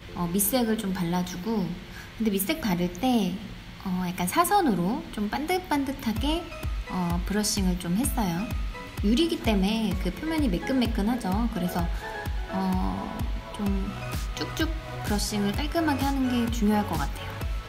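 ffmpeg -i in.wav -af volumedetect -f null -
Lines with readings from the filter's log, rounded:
mean_volume: -26.9 dB
max_volume: -9.9 dB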